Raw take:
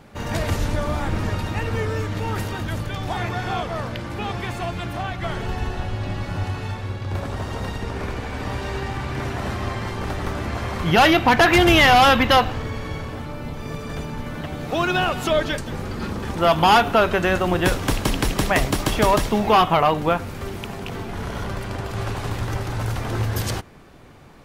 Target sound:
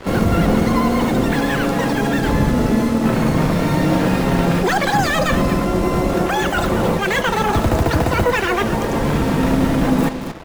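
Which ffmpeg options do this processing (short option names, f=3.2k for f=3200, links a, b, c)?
-filter_complex "[0:a]highshelf=f=9.7k:g=5,areverse,acompressor=threshold=-24dB:ratio=6,areverse,tiltshelf=f=820:g=9,asplit=2[a][b];[b]adelay=14,volume=-12.5dB[c];[a][c]amix=inputs=2:normalize=0,asplit=2[d][e];[e]aecho=0:1:534:0.282[f];[d][f]amix=inputs=2:normalize=0,asetrate=103194,aresample=44100,acrusher=bits=5:mix=0:aa=0.5,asplit=2[g][h];[h]adelay=99.13,volume=-24dB,highshelf=f=4k:g=-2.23[i];[g][i]amix=inputs=2:normalize=0,asplit=3[j][k][l];[k]asetrate=58866,aresample=44100,atempo=0.749154,volume=-16dB[m];[l]asetrate=88200,aresample=44100,atempo=0.5,volume=-13dB[n];[j][m][n]amix=inputs=3:normalize=0,volume=4.5dB"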